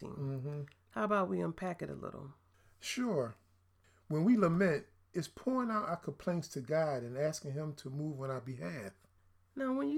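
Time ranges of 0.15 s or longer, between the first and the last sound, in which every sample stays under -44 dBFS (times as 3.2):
0.72–0.96
2.28–2.84
3.31–4.1
4.82–5.15
8.89–9.57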